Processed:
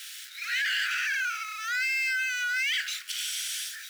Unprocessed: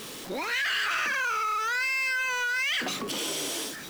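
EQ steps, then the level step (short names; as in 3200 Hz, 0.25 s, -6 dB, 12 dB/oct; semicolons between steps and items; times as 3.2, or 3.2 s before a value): steep high-pass 1400 Hz 96 dB/oct; 0.0 dB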